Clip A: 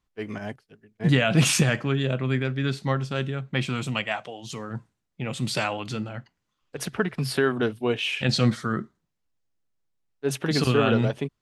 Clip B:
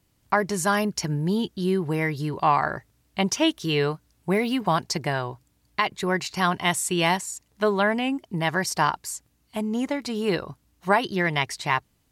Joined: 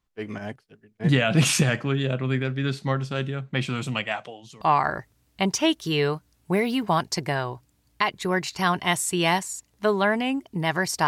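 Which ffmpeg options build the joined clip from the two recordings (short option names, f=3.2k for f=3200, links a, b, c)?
-filter_complex "[0:a]asettb=1/sr,asplit=3[a][b][c];[a]atrim=end=4.194[d];[b]atrim=start=4.19:end=4.61,asetpts=PTS-STARTPTS,afade=t=in:d=0.004:c=qsin,afade=t=out:st=0.416:d=0.004:c=qsin,aeval=exprs='val(0)*pow(10,-19*(0.5-0.5*cos(2*PI*0.8*n/s))/20)':c=same[e];[c]atrim=start=4.606[f];[d][e]acrossfade=d=0.004:c1=hsin:c2=qsin[g];[g][f]acrossfade=d=0.004:c1=qsin:c2=hsin,apad=whole_dur=11.07,atrim=end=11.07,atrim=end=4.612[h];[1:a]atrim=start=2.388:end=8.85[i];[h][i]acrossfade=d=0.004:c1=hsin:c2=hsin"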